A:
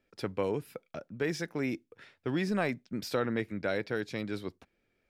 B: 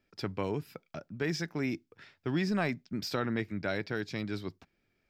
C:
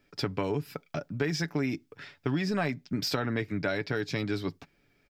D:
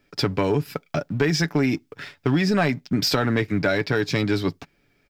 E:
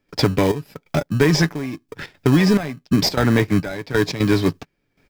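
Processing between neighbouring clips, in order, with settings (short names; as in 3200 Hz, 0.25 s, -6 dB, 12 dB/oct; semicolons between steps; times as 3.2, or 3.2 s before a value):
thirty-one-band EQ 100 Hz +4 dB, 160 Hz +4 dB, 500 Hz -7 dB, 5000 Hz +5 dB, 10000 Hz -10 dB
comb 7 ms, depth 40%; compressor 4:1, threshold -34 dBFS, peak gain reduction 8.5 dB; gain +7.5 dB
sample leveller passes 1; gain +5.5 dB
in parallel at -6.5 dB: sample-rate reducer 1400 Hz, jitter 0%; on the sum: step gate ".xxxxx....xx" 175 bpm -12 dB; gain +3 dB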